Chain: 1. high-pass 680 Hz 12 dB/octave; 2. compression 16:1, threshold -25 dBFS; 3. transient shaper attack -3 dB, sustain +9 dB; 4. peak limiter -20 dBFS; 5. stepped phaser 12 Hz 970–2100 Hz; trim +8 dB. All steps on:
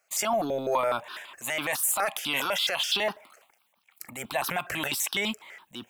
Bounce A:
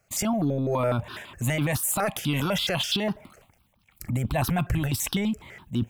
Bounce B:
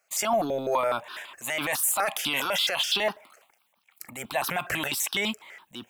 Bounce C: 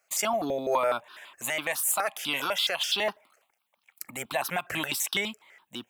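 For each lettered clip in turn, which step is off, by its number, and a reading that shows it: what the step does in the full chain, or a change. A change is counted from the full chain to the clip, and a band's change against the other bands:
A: 1, 125 Hz band +21.0 dB; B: 2, mean gain reduction 2.5 dB; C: 3, momentary loudness spread change -5 LU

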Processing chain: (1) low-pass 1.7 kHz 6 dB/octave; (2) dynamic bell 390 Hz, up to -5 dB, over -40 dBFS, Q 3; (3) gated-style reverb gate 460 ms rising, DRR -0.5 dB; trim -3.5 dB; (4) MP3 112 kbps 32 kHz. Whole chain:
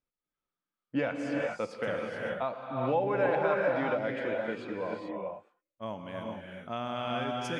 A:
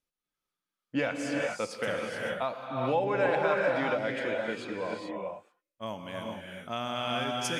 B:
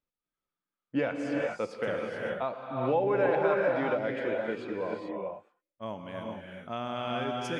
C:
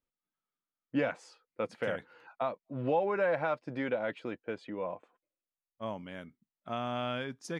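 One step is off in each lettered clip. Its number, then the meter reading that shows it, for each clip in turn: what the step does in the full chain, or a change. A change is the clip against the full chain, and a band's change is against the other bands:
1, loudness change +1.0 LU; 2, 500 Hz band +1.5 dB; 3, momentary loudness spread change +4 LU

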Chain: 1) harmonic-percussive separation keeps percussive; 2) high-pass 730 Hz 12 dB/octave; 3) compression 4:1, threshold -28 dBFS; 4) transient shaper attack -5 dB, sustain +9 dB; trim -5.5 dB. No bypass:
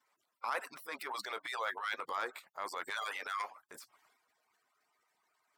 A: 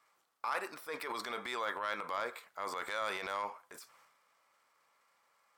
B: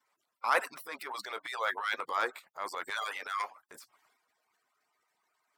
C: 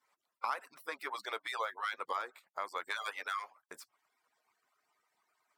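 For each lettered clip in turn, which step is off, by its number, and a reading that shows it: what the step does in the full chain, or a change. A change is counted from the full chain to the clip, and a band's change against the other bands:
1, 250 Hz band +6.0 dB; 3, mean gain reduction 3.0 dB; 4, 250 Hz band -2.5 dB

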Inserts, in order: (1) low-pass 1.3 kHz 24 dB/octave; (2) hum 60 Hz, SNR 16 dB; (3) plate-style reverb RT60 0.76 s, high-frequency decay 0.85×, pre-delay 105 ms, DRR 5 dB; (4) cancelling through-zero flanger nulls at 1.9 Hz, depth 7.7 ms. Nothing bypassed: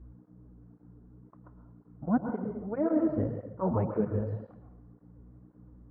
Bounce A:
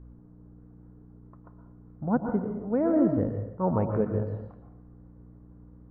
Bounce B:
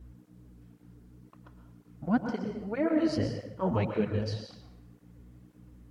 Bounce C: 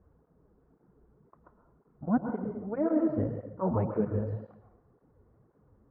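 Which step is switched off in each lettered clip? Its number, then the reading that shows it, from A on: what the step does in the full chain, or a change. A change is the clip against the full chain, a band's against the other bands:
4, loudness change +3.5 LU; 1, 2 kHz band +8.5 dB; 2, momentary loudness spread change -2 LU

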